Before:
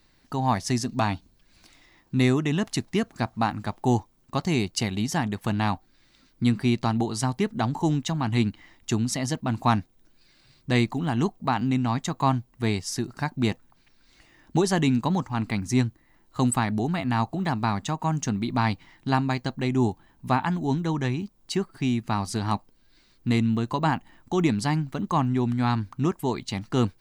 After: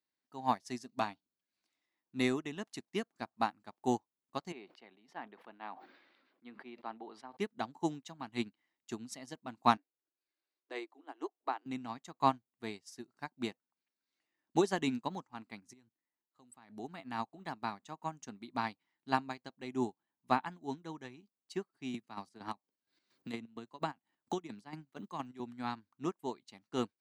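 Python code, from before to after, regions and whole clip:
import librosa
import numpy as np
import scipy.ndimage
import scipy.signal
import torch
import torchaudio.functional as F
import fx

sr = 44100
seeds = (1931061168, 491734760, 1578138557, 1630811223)

y = fx.chain(x, sr, fx.highpass(hz=370.0, slope=12),
    fx.air_absorb(metres=400.0),
    fx.sustainer(db_per_s=29.0), at=(4.52, 7.37))
y = fx.chain(y, sr, fx.steep_highpass(hz=280.0, slope=96),
    fx.high_shelf(hz=3000.0, db=-11.0), at=(9.77, 11.66))
y = fx.chain(y, sr, fx.level_steps(step_db=16),
    fx.high_shelf(hz=9300.0, db=-2.5), at=(15.73, 16.7))
y = fx.chain(y, sr, fx.chopper(hz=4.3, depth_pct=60, duty_pct=50),
    fx.band_squash(depth_pct=100), at=(21.94, 25.4))
y = scipy.signal.sosfilt(scipy.signal.butter(2, 250.0, 'highpass', fs=sr, output='sos'), y)
y = fx.upward_expand(y, sr, threshold_db=-37.0, expansion=2.5)
y = y * 10.0 ** (-1.5 / 20.0)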